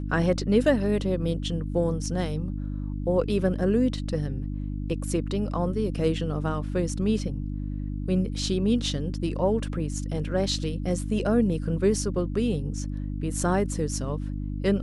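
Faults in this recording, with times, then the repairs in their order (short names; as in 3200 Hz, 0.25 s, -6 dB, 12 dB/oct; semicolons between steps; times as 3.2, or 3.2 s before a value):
hum 50 Hz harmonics 6 -31 dBFS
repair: de-hum 50 Hz, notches 6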